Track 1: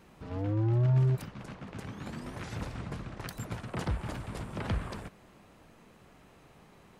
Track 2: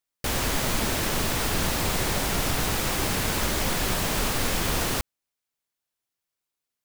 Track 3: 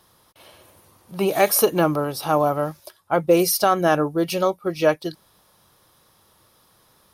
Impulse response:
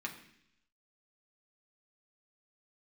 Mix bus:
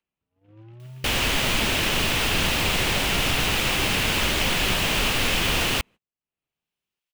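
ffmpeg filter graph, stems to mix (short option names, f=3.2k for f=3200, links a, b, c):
-filter_complex "[0:a]adynamicequalizer=threshold=0.00794:dfrequency=140:dqfactor=2.1:tfrequency=140:tqfactor=2.1:attack=5:release=100:ratio=0.375:range=3:mode=boostabove:tftype=bell,acrossover=split=150|1300[a][b][c];[a]acompressor=threshold=-40dB:ratio=4[d];[b]acompressor=threshold=-35dB:ratio=4[e];[c]acompressor=threshold=-57dB:ratio=4[f];[d][e][f]amix=inputs=3:normalize=0,volume=-10dB[g];[1:a]equalizer=f=14k:w=0.35:g=-3,acompressor=mode=upward:threshold=-45dB:ratio=2.5,adelay=800,volume=1dB[h];[g][h]amix=inputs=2:normalize=0,equalizer=f=2.8k:t=o:w=0.85:g=11,acompressor=mode=upward:threshold=-44dB:ratio=2.5,agate=range=-36dB:threshold=-42dB:ratio=16:detection=peak"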